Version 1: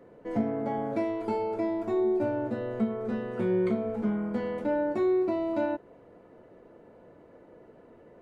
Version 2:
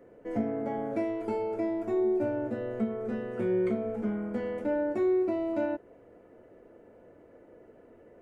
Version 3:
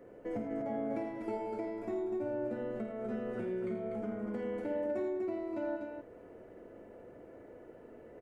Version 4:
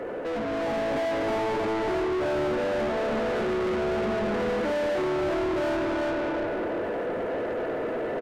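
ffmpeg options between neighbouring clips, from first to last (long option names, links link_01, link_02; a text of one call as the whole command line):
ffmpeg -i in.wav -af "equalizer=frequency=160:width_type=o:width=0.67:gain=-7,equalizer=frequency=1000:width_type=o:width=0.67:gain=-6,equalizer=frequency=4000:width_type=o:width=0.67:gain=-8" out.wav
ffmpeg -i in.wav -filter_complex "[0:a]acompressor=threshold=-36dB:ratio=6,asplit=2[link_01][link_02];[link_02]aecho=0:1:51|83|104|193|246:0.376|0.355|0.251|0.15|0.562[link_03];[link_01][link_03]amix=inputs=2:normalize=0" out.wav
ffmpeg -i in.wav -filter_complex "[0:a]aecho=1:1:352|704|1056|1408:0.631|0.208|0.0687|0.0227,asplit=2[link_01][link_02];[link_02]highpass=frequency=720:poles=1,volume=36dB,asoftclip=type=tanh:threshold=-23.5dB[link_03];[link_01][link_03]amix=inputs=2:normalize=0,lowpass=frequency=1900:poles=1,volume=-6dB,dynaudnorm=framelen=260:gausssize=5:maxgain=3dB" out.wav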